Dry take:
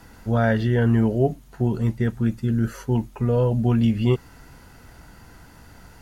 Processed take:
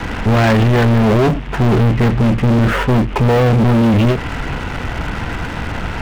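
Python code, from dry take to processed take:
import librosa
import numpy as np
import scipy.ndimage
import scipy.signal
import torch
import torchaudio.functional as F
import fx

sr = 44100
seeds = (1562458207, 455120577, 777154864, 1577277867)

p1 = fx.cvsd(x, sr, bps=16000)
p2 = fx.over_compress(p1, sr, threshold_db=-26.0, ratio=-1.0)
p3 = p1 + F.gain(torch.from_numpy(p2), 2.0).numpy()
p4 = fx.leveller(p3, sr, passes=5)
p5 = fx.end_taper(p4, sr, db_per_s=130.0)
y = F.gain(torch.from_numpy(p5), -3.0).numpy()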